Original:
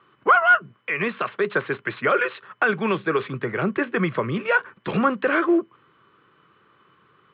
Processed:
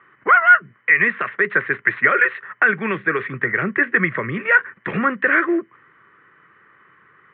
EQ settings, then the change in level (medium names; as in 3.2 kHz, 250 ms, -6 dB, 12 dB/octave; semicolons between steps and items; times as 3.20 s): dynamic bell 810 Hz, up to -6 dB, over -34 dBFS, Q 1.1; resonant low-pass 1.9 kHz, resonance Q 6.4; 0.0 dB